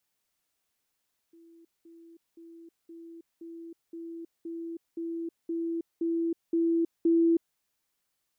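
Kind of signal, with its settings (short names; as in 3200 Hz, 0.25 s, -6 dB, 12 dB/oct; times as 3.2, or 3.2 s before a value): level ladder 333 Hz -52.5 dBFS, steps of 3 dB, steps 12, 0.32 s 0.20 s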